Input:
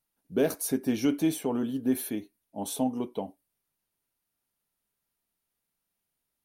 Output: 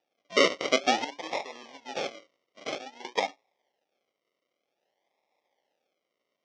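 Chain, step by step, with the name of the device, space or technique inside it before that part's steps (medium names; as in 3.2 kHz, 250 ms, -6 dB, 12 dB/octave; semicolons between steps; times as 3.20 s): 1.04–3.05 s: pre-emphasis filter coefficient 0.9; circuit-bent sampling toy (decimation with a swept rate 41×, swing 60% 0.52 Hz; cabinet simulation 490–5800 Hz, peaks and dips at 550 Hz +5 dB, 810 Hz +7 dB, 1.5 kHz -9 dB, 2.1 kHz +8 dB, 3.2 kHz +7 dB, 5.7 kHz +9 dB); trim +5.5 dB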